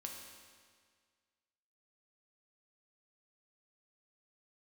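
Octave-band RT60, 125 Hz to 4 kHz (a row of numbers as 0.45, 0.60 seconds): 1.8, 1.8, 1.8, 1.8, 1.8, 1.7 seconds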